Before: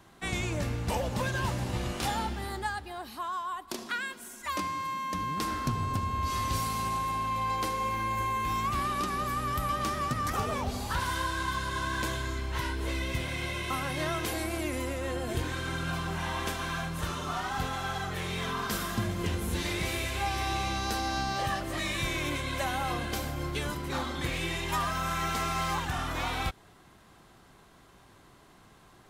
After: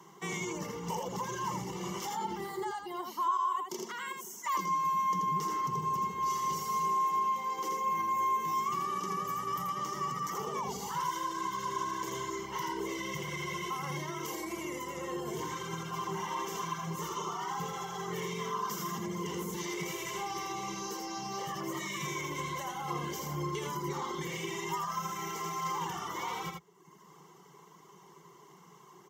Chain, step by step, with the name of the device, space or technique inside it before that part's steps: PA system with an anti-feedback notch (high-pass 150 Hz 24 dB/octave; Butterworth band-stop 2.5 kHz, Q 3.9; peak limiter -29.5 dBFS, peak gain reduction 11 dB); 6.78–7.91 s: high-pass 150 Hz 24 dB/octave; reverb removal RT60 1 s; rippled EQ curve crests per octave 0.76, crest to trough 15 dB; delay 82 ms -4.5 dB

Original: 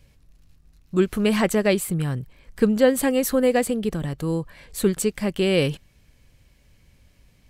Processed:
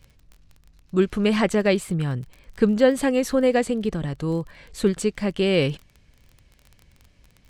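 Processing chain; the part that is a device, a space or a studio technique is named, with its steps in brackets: lo-fi chain (low-pass 6.6 kHz 12 dB/octave; wow and flutter 25 cents; crackle 24 per s -35 dBFS)

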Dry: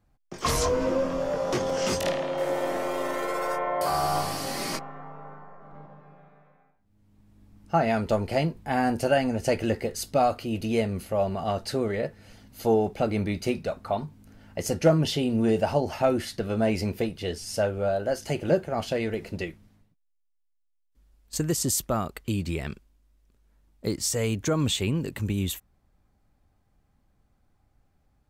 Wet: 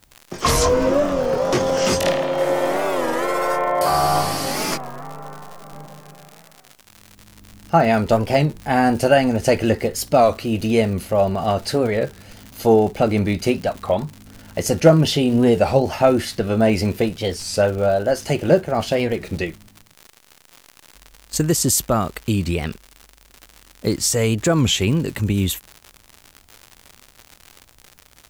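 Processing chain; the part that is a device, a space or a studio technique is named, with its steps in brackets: warped LP (warped record 33 1/3 rpm, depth 160 cents; crackle 130 per s -36 dBFS; white noise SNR 43 dB); trim +8 dB

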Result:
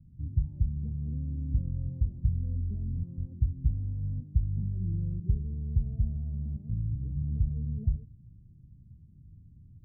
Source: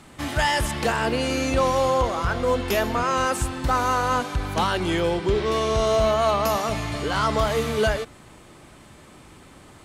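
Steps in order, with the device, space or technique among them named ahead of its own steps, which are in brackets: the neighbour's flat through the wall (low-pass 160 Hz 24 dB/octave; peaking EQ 93 Hz +4 dB 0.8 oct); trim -1 dB

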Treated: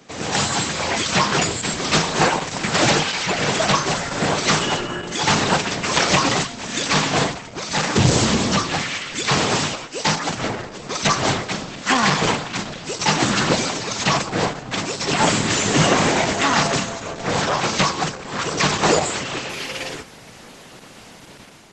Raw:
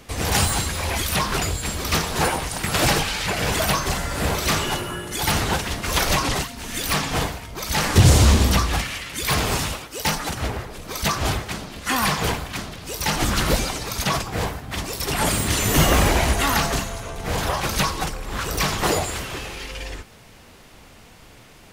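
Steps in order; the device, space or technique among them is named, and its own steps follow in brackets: video call (high-pass 130 Hz 24 dB/octave; level rider gain up to 7.5 dB; Opus 12 kbps 48 kHz)

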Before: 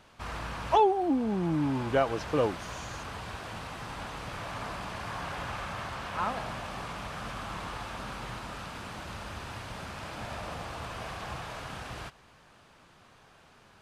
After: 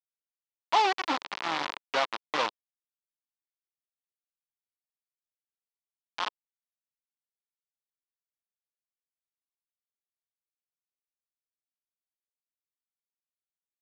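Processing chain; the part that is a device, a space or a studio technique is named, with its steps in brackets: hand-held game console (bit crusher 4-bit; cabinet simulation 430–4900 Hz, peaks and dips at 440 Hz -8 dB, 620 Hz -5 dB, 1 kHz +4 dB, 1.6 kHz -3 dB)

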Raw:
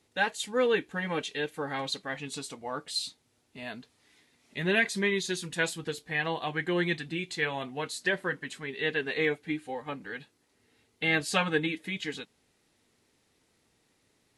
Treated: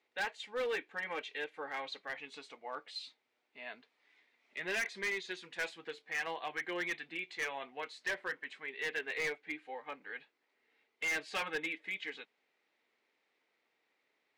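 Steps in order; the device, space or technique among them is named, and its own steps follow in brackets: megaphone (band-pass 480–3200 Hz; peaking EQ 2.2 kHz +6 dB 0.41 oct; hard clipper -25 dBFS, distortion -10 dB); trim -6 dB

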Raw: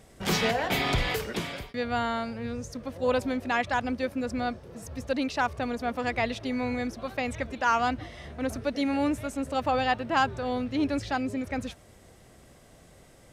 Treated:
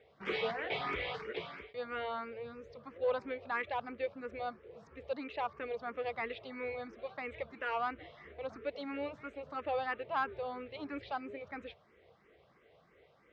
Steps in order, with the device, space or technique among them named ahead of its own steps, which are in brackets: barber-pole phaser into a guitar amplifier (barber-pole phaser +3 Hz; saturation -18.5 dBFS, distortion -23 dB; cabinet simulation 100–3800 Hz, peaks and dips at 110 Hz -9 dB, 170 Hz -4 dB, 250 Hz -9 dB, 450 Hz +8 dB, 1.2 kHz +5 dB, 2.2 kHz +5 dB); trim -7.5 dB

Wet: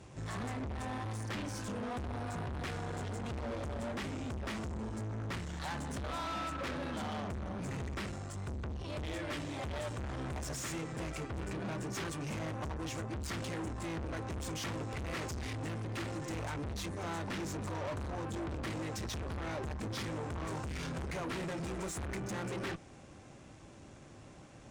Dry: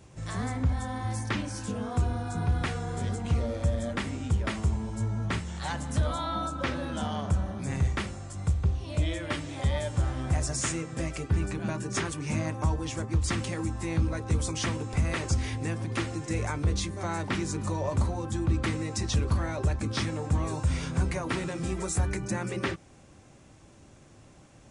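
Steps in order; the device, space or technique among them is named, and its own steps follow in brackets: tube preamp driven hard (valve stage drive 39 dB, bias 0.45; bass shelf 120 Hz -4 dB; treble shelf 7 kHz -8 dB); trim +3.5 dB

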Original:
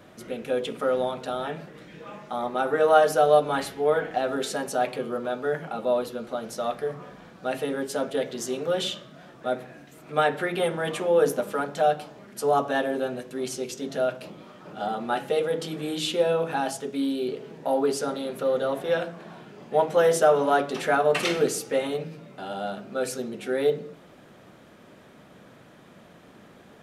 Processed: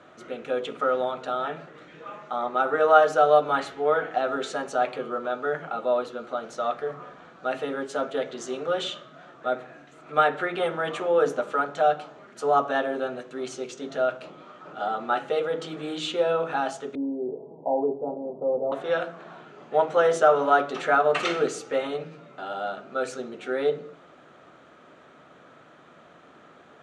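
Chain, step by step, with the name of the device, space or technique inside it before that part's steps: car door speaker (cabinet simulation 91–7100 Hz, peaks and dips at 110 Hz -10 dB, 200 Hz -9 dB, 690 Hz +3 dB, 1.3 kHz +9 dB, 5.1 kHz -7 dB); 16.95–18.72 s: steep low-pass 940 Hz 72 dB/octave; trim -1.5 dB

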